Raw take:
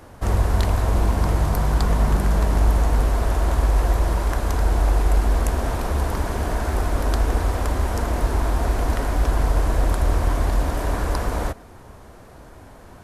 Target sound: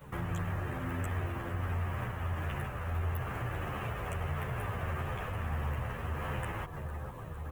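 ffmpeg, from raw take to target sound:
ffmpeg -i in.wav -filter_complex "[0:a]equalizer=frequency=2800:width=3.2:gain=-11.5,aecho=1:1:790|1580|2370|3160|3950|4740:0.2|0.114|0.0648|0.037|0.0211|0.012,afftdn=noise_reduction=13:noise_floor=-35,acrossover=split=270[link_01][link_02];[link_01]lowshelf=frequency=73:gain=-5.5[link_03];[link_02]acrusher=bits=5:mode=log:mix=0:aa=0.000001[link_04];[link_03][link_04]amix=inputs=2:normalize=0,acompressor=threshold=-39dB:ratio=3,asetrate=76440,aresample=44100,crystalizer=i=0.5:c=0,asplit=2[link_05][link_06];[link_06]adelay=10.9,afreqshift=-1.6[link_07];[link_05][link_07]amix=inputs=2:normalize=1,volume=4dB" out.wav

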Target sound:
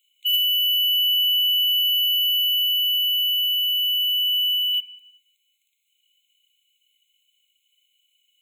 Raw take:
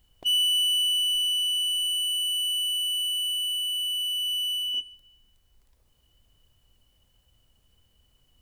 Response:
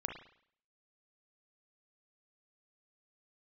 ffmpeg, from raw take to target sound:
-filter_complex "[0:a]aeval=exprs='0.112*(cos(1*acos(clip(val(0)/0.112,-1,1)))-cos(1*PI/2))+0.0282*(cos(3*acos(clip(val(0)/0.112,-1,1)))-cos(3*PI/2))+0.0316*(cos(4*acos(clip(val(0)/0.112,-1,1)))-cos(4*PI/2))+0.0316*(cos(5*acos(clip(val(0)/0.112,-1,1)))-cos(5*PI/2))+0.0158*(cos(7*acos(clip(val(0)/0.112,-1,1)))-cos(7*PI/2))':channel_layout=same,asplit=2[link_01][link_02];[1:a]atrim=start_sample=2205,asetrate=30870,aresample=44100,lowpass=2100[link_03];[link_02][link_03]afir=irnorm=-1:irlink=0,volume=1dB[link_04];[link_01][link_04]amix=inputs=2:normalize=0,afftfilt=real='re*eq(mod(floor(b*sr/1024/2100),2),1)':imag='im*eq(mod(floor(b*sr/1024/2100),2),1)':win_size=1024:overlap=0.75,volume=7.5dB"

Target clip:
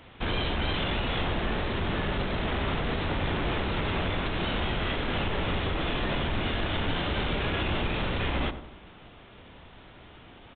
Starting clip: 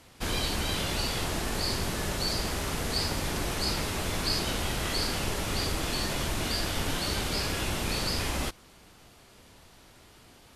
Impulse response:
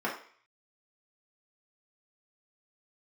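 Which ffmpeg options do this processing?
-filter_complex "[0:a]alimiter=limit=-21.5dB:level=0:latency=1:release=66,aresample=8000,asoftclip=type=tanh:threshold=-27dB,aresample=44100,asplit=2[link_01][link_02];[link_02]adelay=92,lowpass=frequency=1300:poles=1,volume=-10dB,asplit=2[link_03][link_04];[link_04]adelay=92,lowpass=frequency=1300:poles=1,volume=0.5,asplit=2[link_05][link_06];[link_06]adelay=92,lowpass=frequency=1300:poles=1,volume=0.5,asplit=2[link_07][link_08];[link_08]adelay=92,lowpass=frequency=1300:poles=1,volume=0.5,asplit=2[link_09][link_10];[link_10]adelay=92,lowpass=frequency=1300:poles=1,volume=0.5[link_11];[link_01][link_03][link_05][link_07][link_09][link_11]amix=inputs=6:normalize=0,volume=5.5dB"

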